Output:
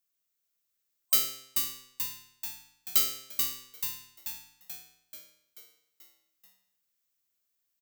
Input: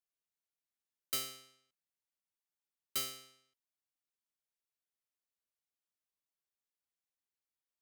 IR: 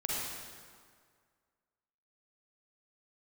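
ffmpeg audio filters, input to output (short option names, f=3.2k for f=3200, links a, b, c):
-filter_complex "[0:a]superequalizer=9b=0.447:16b=0.562,crystalizer=i=1.5:c=0,asplit=9[a][b][c][d][e][f][g][h][i];[b]adelay=435,afreqshift=-140,volume=-5dB[j];[c]adelay=870,afreqshift=-280,volume=-9.6dB[k];[d]adelay=1305,afreqshift=-420,volume=-14.2dB[l];[e]adelay=1740,afreqshift=-560,volume=-18.7dB[m];[f]adelay=2175,afreqshift=-700,volume=-23.3dB[n];[g]adelay=2610,afreqshift=-840,volume=-27.9dB[o];[h]adelay=3045,afreqshift=-980,volume=-32.5dB[p];[i]adelay=3480,afreqshift=-1120,volume=-37.1dB[q];[a][j][k][l][m][n][o][p][q]amix=inputs=9:normalize=0,volume=4dB"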